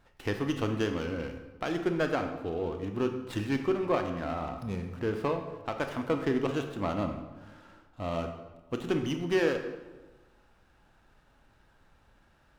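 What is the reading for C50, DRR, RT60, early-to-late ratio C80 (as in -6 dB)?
7.5 dB, 5.5 dB, 1.2 s, 9.5 dB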